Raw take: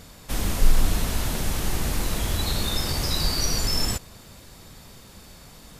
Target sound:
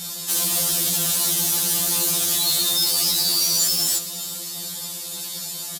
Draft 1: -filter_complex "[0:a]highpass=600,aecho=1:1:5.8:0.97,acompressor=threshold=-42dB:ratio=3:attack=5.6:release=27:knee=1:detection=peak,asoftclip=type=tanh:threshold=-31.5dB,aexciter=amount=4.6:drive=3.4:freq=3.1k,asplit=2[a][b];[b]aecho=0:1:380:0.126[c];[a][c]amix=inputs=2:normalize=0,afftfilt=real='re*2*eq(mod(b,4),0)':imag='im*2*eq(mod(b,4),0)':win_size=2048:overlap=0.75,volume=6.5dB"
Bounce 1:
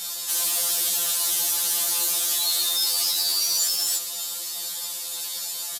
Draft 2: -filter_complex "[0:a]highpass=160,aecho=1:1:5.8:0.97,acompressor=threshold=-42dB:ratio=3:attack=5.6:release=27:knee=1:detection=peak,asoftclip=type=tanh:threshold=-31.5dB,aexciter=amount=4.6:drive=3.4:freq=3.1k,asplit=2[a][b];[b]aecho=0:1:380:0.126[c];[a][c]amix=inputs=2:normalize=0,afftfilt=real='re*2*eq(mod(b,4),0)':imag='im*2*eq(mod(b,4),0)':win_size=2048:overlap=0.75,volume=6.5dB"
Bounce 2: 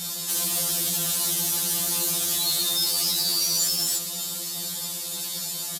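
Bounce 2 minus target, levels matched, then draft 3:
compressor: peak gain reduction +6 dB
-filter_complex "[0:a]highpass=160,aecho=1:1:5.8:0.97,acompressor=threshold=-33dB:ratio=3:attack=5.6:release=27:knee=1:detection=peak,asoftclip=type=tanh:threshold=-31.5dB,aexciter=amount=4.6:drive=3.4:freq=3.1k,asplit=2[a][b];[b]aecho=0:1:380:0.126[c];[a][c]amix=inputs=2:normalize=0,afftfilt=real='re*2*eq(mod(b,4),0)':imag='im*2*eq(mod(b,4),0)':win_size=2048:overlap=0.75,volume=6.5dB"

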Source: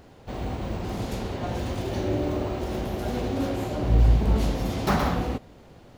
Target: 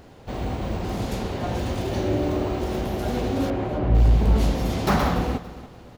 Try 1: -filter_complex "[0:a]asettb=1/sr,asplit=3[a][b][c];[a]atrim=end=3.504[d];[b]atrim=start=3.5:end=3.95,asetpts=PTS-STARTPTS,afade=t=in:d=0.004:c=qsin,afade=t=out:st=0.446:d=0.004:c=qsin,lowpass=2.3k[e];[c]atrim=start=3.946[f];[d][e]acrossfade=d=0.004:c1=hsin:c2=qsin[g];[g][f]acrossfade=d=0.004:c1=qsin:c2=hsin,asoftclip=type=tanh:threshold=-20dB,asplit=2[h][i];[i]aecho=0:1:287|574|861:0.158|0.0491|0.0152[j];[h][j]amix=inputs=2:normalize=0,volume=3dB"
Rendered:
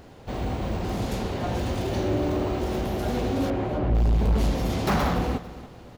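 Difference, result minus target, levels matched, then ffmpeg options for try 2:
soft clip: distortion +11 dB
-filter_complex "[0:a]asettb=1/sr,asplit=3[a][b][c];[a]atrim=end=3.504[d];[b]atrim=start=3.5:end=3.95,asetpts=PTS-STARTPTS,afade=t=in:d=0.004:c=qsin,afade=t=out:st=0.446:d=0.004:c=qsin,lowpass=2.3k[e];[c]atrim=start=3.946[f];[d][e]acrossfade=d=0.004:c1=hsin:c2=qsin[g];[g][f]acrossfade=d=0.004:c1=qsin:c2=hsin,asoftclip=type=tanh:threshold=-11dB,asplit=2[h][i];[i]aecho=0:1:287|574|861:0.158|0.0491|0.0152[j];[h][j]amix=inputs=2:normalize=0,volume=3dB"

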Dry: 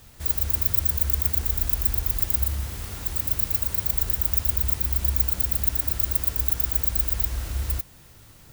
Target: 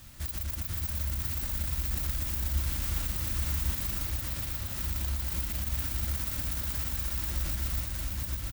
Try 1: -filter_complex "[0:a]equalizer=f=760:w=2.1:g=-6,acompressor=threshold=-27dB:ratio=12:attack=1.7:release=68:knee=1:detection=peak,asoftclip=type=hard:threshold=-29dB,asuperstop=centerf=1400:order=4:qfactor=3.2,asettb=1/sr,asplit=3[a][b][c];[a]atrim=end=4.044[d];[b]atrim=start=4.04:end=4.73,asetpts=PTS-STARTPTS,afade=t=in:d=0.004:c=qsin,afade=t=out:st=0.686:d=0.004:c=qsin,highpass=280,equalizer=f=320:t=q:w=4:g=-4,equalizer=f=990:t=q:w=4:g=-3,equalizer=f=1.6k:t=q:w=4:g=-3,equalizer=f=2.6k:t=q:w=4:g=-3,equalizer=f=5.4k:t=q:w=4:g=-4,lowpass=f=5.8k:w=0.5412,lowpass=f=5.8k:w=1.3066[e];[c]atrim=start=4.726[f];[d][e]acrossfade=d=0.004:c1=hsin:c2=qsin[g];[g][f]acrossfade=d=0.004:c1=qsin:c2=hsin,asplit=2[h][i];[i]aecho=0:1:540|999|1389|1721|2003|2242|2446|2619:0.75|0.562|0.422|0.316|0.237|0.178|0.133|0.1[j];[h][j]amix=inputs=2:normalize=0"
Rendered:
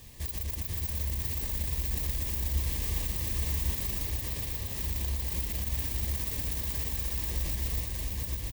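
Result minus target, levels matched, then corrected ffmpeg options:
500 Hz band +3.5 dB
-filter_complex "[0:a]equalizer=f=760:w=2.1:g=-6,acompressor=threshold=-27dB:ratio=12:attack=1.7:release=68:knee=1:detection=peak,asoftclip=type=hard:threshold=-29dB,asuperstop=centerf=440:order=4:qfactor=3.2,asettb=1/sr,asplit=3[a][b][c];[a]atrim=end=4.044[d];[b]atrim=start=4.04:end=4.73,asetpts=PTS-STARTPTS,afade=t=in:d=0.004:c=qsin,afade=t=out:st=0.686:d=0.004:c=qsin,highpass=280,equalizer=f=320:t=q:w=4:g=-4,equalizer=f=990:t=q:w=4:g=-3,equalizer=f=1.6k:t=q:w=4:g=-3,equalizer=f=2.6k:t=q:w=4:g=-3,equalizer=f=5.4k:t=q:w=4:g=-4,lowpass=f=5.8k:w=0.5412,lowpass=f=5.8k:w=1.3066[e];[c]atrim=start=4.726[f];[d][e]acrossfade=d=0.004:c1=hsin:c2=qsin[g];[g][f]acrossfade=d=0.004:c1=qsin:c2=hsin,asplit=2[h][i];[i]aecho=0:1:540|999|1389|1721|2003|2242|2446|2619:0.75|0.562|0.422|0.316|0.237|0.178|0.133|0.1[j];[h][j]amix=inputs=2:normalize=0"

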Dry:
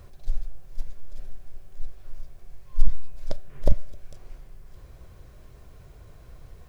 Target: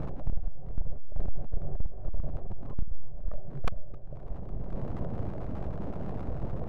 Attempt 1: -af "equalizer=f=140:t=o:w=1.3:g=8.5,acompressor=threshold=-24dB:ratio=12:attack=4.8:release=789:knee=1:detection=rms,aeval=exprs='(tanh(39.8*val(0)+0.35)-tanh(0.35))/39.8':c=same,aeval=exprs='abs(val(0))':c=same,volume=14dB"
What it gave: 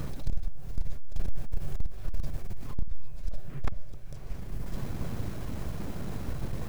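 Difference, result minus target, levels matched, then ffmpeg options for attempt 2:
500 Hz band -3.5 dB
-af "lowpass=f=660:t=q:w=2,equalizer=f=140:t=o:w=1.3:g=8.5,acompressor=threshold=-24dB:ratio=12:attack=4.8:release=789:knee=1:detection=rms,aeval=exprs='(tanh(39.8*val(0)+0.35)-tanh(0.35))/39.8':c=same,aeval=exprs='abs(val(0))':c=same,volume=14dB"

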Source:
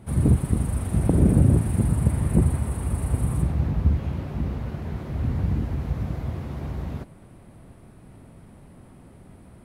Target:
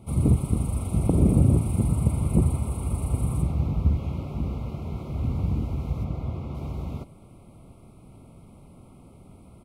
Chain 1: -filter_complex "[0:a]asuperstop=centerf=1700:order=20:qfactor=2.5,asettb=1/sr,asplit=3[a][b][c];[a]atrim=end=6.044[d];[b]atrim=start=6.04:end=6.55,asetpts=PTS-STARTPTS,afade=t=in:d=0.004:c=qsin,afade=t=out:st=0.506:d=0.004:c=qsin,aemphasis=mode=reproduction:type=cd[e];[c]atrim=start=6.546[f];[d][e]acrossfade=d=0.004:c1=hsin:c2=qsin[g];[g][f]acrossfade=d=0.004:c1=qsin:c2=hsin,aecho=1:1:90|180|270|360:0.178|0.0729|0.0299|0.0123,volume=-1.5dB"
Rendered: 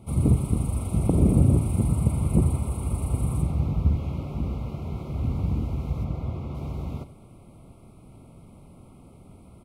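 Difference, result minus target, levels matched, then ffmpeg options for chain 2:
echo-to-direct +10 dB
-filter_complex "[0:a]asuperstop=centerf=1700:order=20:qfactor=2.5,asettb=1/sr,asplit=3[a][b][c];[a]atrim=end=6.044[d];[b]atrim=start=6.04:end=6.55,asetpts=PTS-STARTPTS,afade=t=in:d=0.004:c=qsin,afade=t=out:st=0.506:d=0.004:c=qsin,aemphasis=mode=reproduction:type=cd[e];[c]atrim=start=6.546[f];[d][e]acrossfade=d=0.004:c1=hsin:c2=qsin[g];[g][f]acrossfade=d=0.004:c1=qsin:c2=hsin,aecho=1:1:90|180:0.0562|0.0231,volume=-1.5dB"

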